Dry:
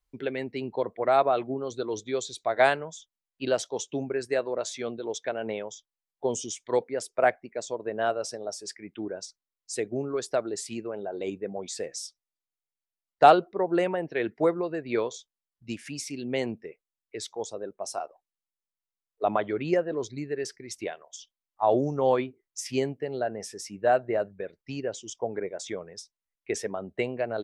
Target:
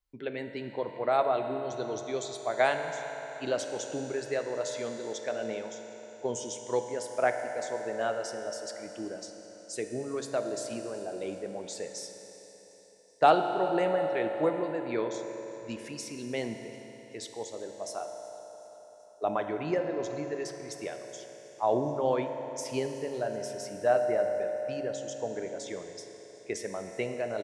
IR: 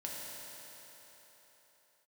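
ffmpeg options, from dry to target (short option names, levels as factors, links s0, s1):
-filter_complex "[0:a]aecho=1:1:376|752|1128|1504:0.0794|0.0469|0.0277|0.0163,asplit=2[s0][s1];[1:a]atrim=start_sample=2205[s2];[s1][s2]afir=irnorm=-1:irlink=0,volume=0.891[s3];[s0][s3]amix=inputs=2:normalize=0,volume=0.398"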